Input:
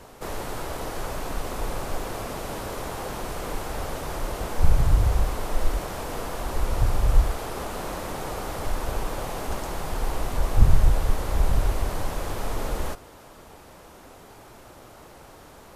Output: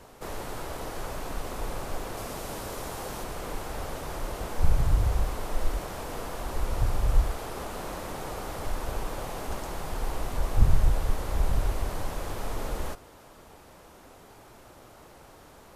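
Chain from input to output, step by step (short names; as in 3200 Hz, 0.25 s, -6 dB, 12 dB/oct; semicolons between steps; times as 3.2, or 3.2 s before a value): 2.17–3.24 tone controls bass 0 dB, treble +4 dB; gain -4 dB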